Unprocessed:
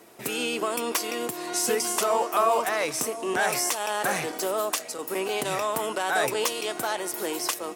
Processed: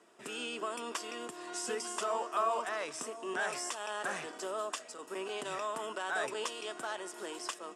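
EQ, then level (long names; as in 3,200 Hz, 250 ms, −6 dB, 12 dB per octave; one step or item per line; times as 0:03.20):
loudspeaker in its box 270–7,800 Hz, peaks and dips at 310 Hz −5 dB, 500 Hz −7 dB, 790 Hz −7 dB, 2,200 Hz −8 dB, 4,200 Hz −9 dB, 6,100 Hz −7 dB
−6.5 dB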